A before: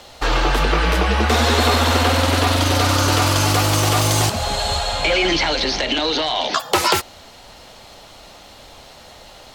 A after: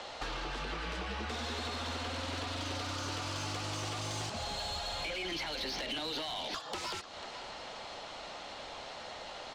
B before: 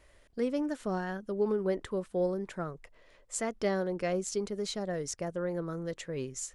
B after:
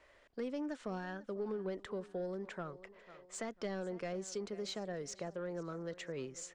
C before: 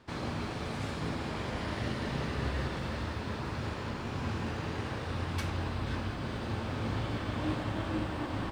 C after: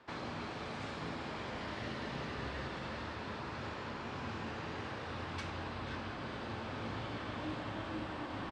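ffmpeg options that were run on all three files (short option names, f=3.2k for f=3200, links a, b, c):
-filter_complex "[0:a]acompressor=threshold=-24dB:ratio=16,lowpass=f=8.7k:w=0.5412,lowpass=f=8.7k:w=1.3066,asplit=2[a][b];[b]aecho=0:1:494|988|1482:0.0891|0.0339|0.0129[c];[a][c]amix=inputs=2:normalize=0,asplit=2[d][e];[e]highpass=f=720:p=1,volume=17dB,asoftclip=type=tanh:threshold=-13dB[f];[d][f]amix=inputs=2:normalize=0,lowpass=f=1.9k:p=1,volume=-6dB,acrossover=split=280|3000[g][h][i];[h]acompressor=threshold=-35dB:ratio=3[j];[g][j][i]amix=inputs=3:normalize=0,volume=-8dB"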